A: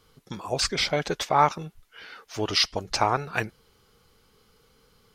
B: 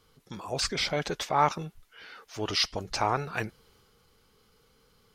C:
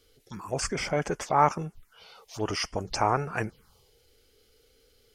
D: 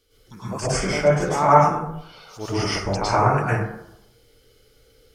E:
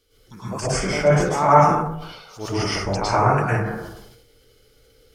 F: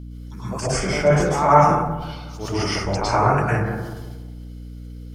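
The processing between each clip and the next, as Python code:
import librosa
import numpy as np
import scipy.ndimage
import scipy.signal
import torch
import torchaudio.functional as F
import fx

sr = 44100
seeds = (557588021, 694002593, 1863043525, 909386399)

y1 = fx.transient(x, sr, attack_db=-3, sustain_db=3)
y1 = y1 * 10.0 ** (-3.0 / 20.0)
y2 = fx.env_phaser(y1, sr, low_hz=160.0, high_hz=3900.0, full_db=-29.5)
y2 = y2 * 10.0 ** (3.0 / 20.0)
y3 = fx.rev_plate(y2, sr, seeds[0], rt60_s=0.78, hf_ratio=0.45, predelay_ms=95, drr_db=-9.5)
y3 = y3 * 10.0 ** (-3.0 / 20.0)
y4 = fx.sustainer(y3, sr, db_per_s=52.0)
y5 = fx.echo_filtered(y4, sr, ms=182, feedback_pct=44, hz=1400.0, wet_db=-12.5)
y5 = fx.add_hum(y5, sr, base_hz=60, snr_db=14)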